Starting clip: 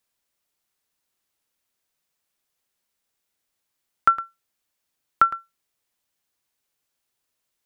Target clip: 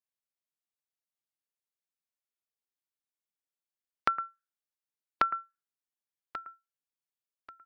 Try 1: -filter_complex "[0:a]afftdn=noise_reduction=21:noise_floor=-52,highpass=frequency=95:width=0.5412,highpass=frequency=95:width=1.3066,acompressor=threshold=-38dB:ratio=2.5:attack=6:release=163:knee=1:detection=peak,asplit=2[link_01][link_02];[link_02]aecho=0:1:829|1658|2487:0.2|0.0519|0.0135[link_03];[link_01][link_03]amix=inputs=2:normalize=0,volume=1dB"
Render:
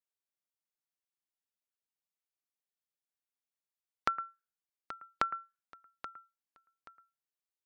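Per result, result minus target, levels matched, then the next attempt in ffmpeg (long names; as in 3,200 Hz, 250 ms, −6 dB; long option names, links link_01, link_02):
echo 308 ms early; downward compressor: peak gain reduction +4 dB
-filter_complex "[0:a]afftdn=noise_reduction=21:noise_floor=-52,highpass=frequency=95:width=0.5412,highpass=frequency=95:width=1.3066,acompressor=threshold=-38dB:ratio=2.5:attack=6:release=163:knee=1:detection=peak,asplit=2[link_01][link_02];[link_02]aecho=0:1:1137|2274|3411:0.2|0.0519|0.0135[link_03];[link_01][link_03]amix=inputs=2:normalize=0,volume=1dB"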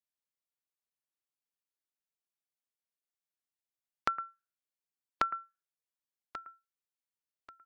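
downward compressor: peak gain reduction +4 dB
-filter_complex "[0:a]afftdn=noise_reduction=21:noise_floor=-52,highpass=frequency=95:width=0.5412,highpass=frequency=95:width=1.3066,acompressor=threshold=-31.5dB:ratio=2.5:attack=6:release=163:knee=1:detection=peak,asplit=2[link_01][link_02];[link_02]aecho=0:1:1137|2274|3411:0.2|0.0519|0.0135[link_03];[link_01][link_03]amix=inputs=2:normalize=0,volume=1dB"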